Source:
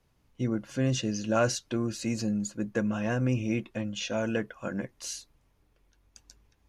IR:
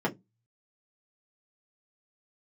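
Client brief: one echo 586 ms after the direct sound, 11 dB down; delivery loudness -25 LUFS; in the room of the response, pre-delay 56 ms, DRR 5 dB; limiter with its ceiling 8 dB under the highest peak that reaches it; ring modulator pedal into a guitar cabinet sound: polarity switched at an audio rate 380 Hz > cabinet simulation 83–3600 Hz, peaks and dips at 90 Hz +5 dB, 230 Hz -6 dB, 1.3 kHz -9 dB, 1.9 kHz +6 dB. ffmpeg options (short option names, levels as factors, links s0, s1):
-filter_complex "[0:a]alimiter=limit=0.0841:level=0:latency=1,aecho=1:1:586:0.282,asplit=2[s0][s1];[1:a]atrim=start_sample=2205,adelay=56[s2];[s1][s2]afir=irnorm=-1:irlink=0,volume=0.188[s3];[s0][s3]amix=inputs=2:normalize=0,aeval=exprs='val(0)*sgn(sin(2*PI*380*n/s))':c=same,highpass=83,equalizer=f=90:t=q:w=4:g=5,equalizer=f=230:t=q:w=4:g=-6,equalizer=f=1300:t=q:w=4:g=-9,equalizer=f=1900:t=q:w=4:g=6,lowpass=f=3600:w=0.5412,lowpass=f=3600:w=1.3066,volume=1.5"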